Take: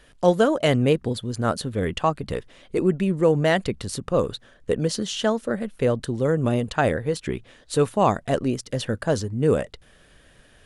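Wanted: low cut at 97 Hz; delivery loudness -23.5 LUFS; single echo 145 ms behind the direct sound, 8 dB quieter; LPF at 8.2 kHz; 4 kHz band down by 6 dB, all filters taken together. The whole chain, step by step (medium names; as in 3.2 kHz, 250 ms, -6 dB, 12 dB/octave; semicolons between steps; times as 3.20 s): high-pass 97 Hz; low-pass 8.2 kHz; peaking EQ 4 kHz -8.5 dB; delay 145 ms -8 dB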